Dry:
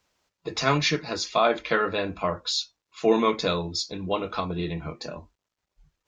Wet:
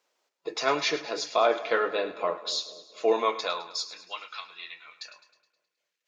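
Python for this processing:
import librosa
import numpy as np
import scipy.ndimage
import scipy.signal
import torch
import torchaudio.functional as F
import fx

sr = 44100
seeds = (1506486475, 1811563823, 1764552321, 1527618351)

y = fx.echo_split(x, sr, split_hz=620.0, low_ms=240, high_ms=105, feedback_pct=52, wet_db=-14.0)
y = fx.filter_sweep_highpass(y, sr, from_hz=430.0, to_hz=2000.0, start_s=2.96, end_s=4.35, q=1.4)
y = y * librosa.db_to_amplitude(-3.5)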